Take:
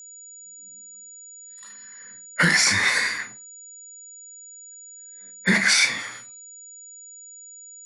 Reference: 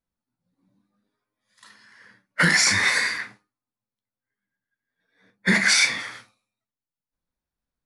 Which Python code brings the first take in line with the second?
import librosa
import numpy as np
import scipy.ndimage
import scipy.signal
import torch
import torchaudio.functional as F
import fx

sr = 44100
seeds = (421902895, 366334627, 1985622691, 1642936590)

y = fx.notch(x, sr, hz=6900.0, q=30.0)